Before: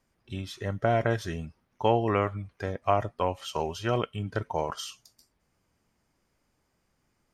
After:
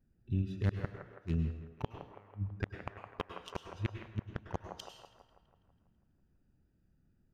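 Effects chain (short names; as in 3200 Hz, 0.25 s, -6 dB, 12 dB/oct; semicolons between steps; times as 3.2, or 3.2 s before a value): Wiener smoothing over 41 samples; bell 580 Hz -13 dB 1.7 oct; notch 7800 Hz, Q 9.8; flipped gate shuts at -27 dBFS, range -38 dB; band-limited delay 0.164 s, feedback 56%, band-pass 900 Hz, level -6 dB; reverb RT60 0.65 s, pre-delay 95 ms, DRR 6.5 dB; gain +6 dB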